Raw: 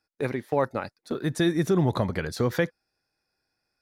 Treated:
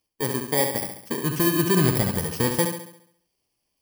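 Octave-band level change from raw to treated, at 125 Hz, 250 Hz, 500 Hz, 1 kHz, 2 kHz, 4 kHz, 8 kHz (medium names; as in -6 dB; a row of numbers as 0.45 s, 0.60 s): +2.5 dB, +2.0 dB, +0.5 dB, +2.0 dB, +3.0 dB, +6.5 dB, +14.5 dB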